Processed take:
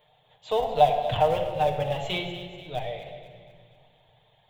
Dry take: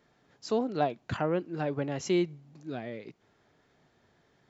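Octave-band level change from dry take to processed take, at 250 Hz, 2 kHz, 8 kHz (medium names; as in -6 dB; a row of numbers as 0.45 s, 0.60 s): -7.5 dB, +4.0 dB, no reading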